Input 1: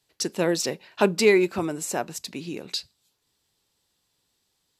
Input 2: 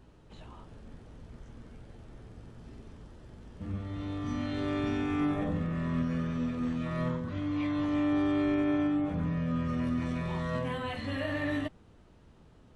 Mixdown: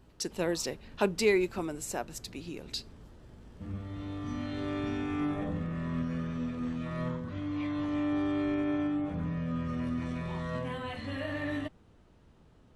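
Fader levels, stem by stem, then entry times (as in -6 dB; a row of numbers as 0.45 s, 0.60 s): -7.5 dB, -2.5 dB; 0.00 s, 0.00 s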